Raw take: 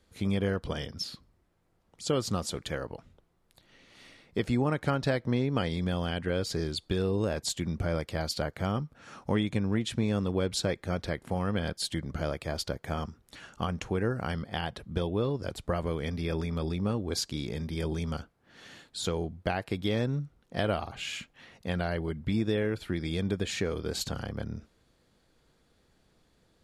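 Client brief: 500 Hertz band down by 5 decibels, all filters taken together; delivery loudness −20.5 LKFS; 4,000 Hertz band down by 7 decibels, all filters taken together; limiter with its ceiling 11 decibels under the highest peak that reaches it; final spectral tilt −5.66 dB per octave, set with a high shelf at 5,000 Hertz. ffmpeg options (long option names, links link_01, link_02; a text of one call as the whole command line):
ffmpeg -i in.wav -af "equalizer=frequency=500:width_type=o:gain=-6,equalizer=frequency=4000:width_type=o:gain=-7,highshelf=frequency=5000:gain=-4,volume=17.5dB,alimiter=limit=-9.5dB:level=0:latency=1" out.wav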